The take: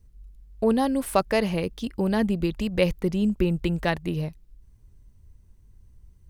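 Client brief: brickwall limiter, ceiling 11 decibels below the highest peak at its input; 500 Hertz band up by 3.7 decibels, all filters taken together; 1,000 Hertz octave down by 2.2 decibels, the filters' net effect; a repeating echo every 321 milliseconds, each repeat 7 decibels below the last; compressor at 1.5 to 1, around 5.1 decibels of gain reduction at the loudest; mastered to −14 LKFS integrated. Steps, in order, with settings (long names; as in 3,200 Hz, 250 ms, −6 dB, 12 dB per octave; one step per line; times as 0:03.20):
parametric band 500 Hz +6 dB
parametric band 1,000 Hz −6 dB
downward compressor 1.5 to 1, threshold −28 dBFS
brickwall limiter −21 dBFS
repeating echo 321 ms, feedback 45%, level −7 dB
level +16.5 dB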